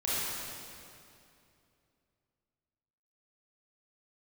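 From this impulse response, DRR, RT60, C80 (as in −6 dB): −10.0 dB, 2.6 s, −3.0 dB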